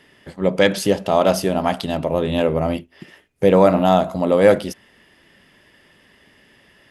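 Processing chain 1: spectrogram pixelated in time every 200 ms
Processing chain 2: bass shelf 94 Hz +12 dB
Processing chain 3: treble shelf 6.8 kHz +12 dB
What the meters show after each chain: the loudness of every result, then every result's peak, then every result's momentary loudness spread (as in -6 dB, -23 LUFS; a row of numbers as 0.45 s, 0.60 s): -20.0 LUFS, -17.0 LUFS, -17.5 LUFS; -3.0 dBFS, -1.5 dBFS, -1.0 dBFS; 10 LU, 9 LU, 10 LU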